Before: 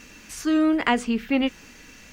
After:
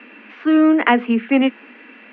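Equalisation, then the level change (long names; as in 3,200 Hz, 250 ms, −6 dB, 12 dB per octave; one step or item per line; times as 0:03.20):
Butterworth high-pass 210 Hz 96 dB per octave
Butterworth low-pass 2,800 Hz 36 dB per octave
+7.0 dB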